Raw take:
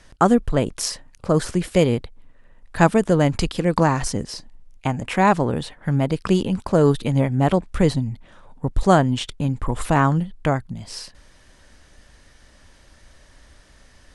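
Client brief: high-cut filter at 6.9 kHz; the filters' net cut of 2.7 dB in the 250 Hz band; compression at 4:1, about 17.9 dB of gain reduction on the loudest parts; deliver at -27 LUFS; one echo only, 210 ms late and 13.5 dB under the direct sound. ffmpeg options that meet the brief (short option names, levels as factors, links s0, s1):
-af "lowpass=6900,equalizer=f=250:t=o:g=-4,acompressor=threshold=0.0224:ratio=4,aecho=1:1:210:0.211,volume=2.82"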